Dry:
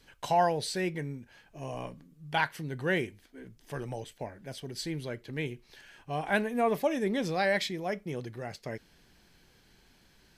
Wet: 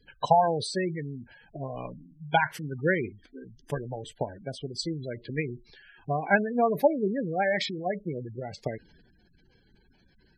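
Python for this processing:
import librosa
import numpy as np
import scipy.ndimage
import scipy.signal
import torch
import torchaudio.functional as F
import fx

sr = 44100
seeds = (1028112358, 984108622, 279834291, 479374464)

y = fx.transient(x, sr, attack_db=10, sustain_db=6)
y = fx.spec_gate(y, sr, threshold_db=-15, keep='strong')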